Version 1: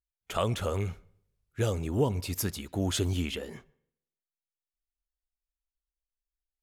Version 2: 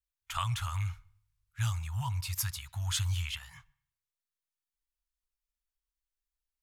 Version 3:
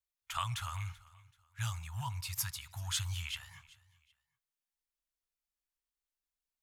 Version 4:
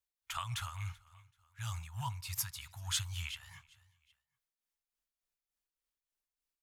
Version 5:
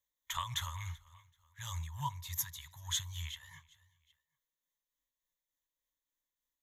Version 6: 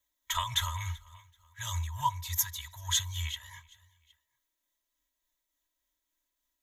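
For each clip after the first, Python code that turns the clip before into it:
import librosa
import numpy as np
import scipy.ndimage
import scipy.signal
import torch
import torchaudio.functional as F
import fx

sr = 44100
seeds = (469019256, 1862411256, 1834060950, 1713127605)

y1 = scipy.signal.sosfilt(scipy.signal.ellip(3, 1.0, 50, [120.0, 960.0], 'bandstop', fs=sr, output='sos'), x)
y2 = fx.low_shelf(y1, sr, hz=100.0, db=-9.5)
y2 = fx.echo_feedback(y2, sr, ms=383, feedback_pct=31, wet_db=-21.5)
y2 = y2 * librosa.db_to_amplitude(-2.0)
y3 = y2 * (1.0 - 0.55 / 2.0 + 0.55 / 2.0 * np.cos(2.0 * np.pi * 3.4 * (np.arange(len(y2)) / sr)))
y3 = y3 * librosa.db_to_amplitude(1.0)
y4 = fx.ripple_eq(y3, sr, per_octave=1.1, db=13)
y4 = fx.rider(y4, sr, range_db=10, speed_s=2.0)
y4 = y4 * librosa.db_to_amplitude(-4.0)
y5 = y4 + 0.91 * np.pad(y4, (int(3.1 * sr / 1000.0), 0))[:len(y4)]
y5 = y5 * librosa.db_to_amplitude(4.5)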